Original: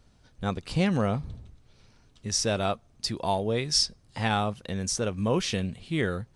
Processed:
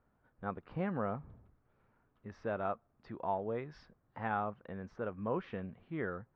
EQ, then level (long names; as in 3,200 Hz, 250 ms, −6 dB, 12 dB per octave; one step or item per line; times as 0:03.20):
transistor ladder low-pass 1,800 Hz, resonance 30%
low-shelf EQ 130 Hz −11 dB
−2.0 dB